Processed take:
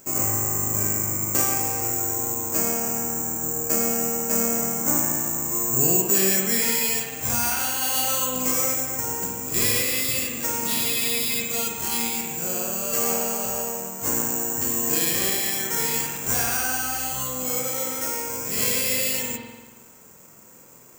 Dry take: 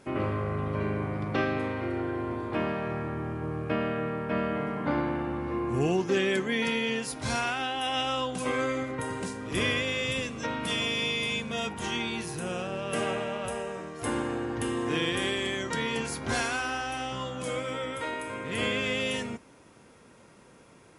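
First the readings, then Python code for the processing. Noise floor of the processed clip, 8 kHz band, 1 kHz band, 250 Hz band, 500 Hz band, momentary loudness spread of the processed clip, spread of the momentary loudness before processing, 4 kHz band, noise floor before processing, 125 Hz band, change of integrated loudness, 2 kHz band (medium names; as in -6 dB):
-49 dBFS, +20.5 dB, +1.5 dB, 0.0 dB, 0.0 dB, 6 LU, 7 LU, +3.0 dB, -55 dBFS, 0.0 dB, +8.5 dB, +0.5 dB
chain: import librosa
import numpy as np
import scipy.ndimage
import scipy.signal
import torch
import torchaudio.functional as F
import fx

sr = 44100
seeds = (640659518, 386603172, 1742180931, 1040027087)

y = (np.kron(scipy.signal.resample_poly(x, 1, 6), np.eye(6)[0]) * 6)[:len(x)]
y = fx.rev_spring(y, sr, rt60_s=1.2, pass_ms=(47,), chirp_ms=65, drr_db=0.0)
y = y * 10.0 ** (-2.0 / 20.0)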